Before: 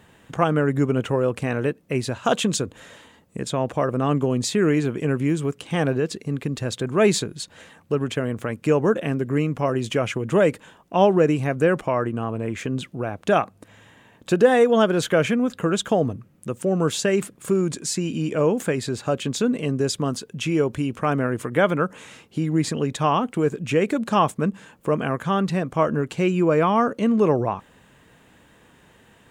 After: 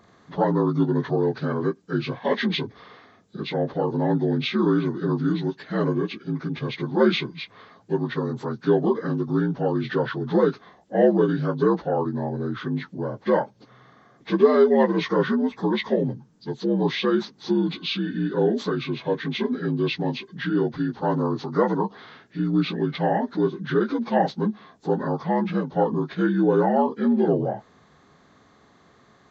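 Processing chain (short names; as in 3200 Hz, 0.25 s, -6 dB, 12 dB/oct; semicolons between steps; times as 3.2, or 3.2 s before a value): inharmonic rescaling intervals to 79%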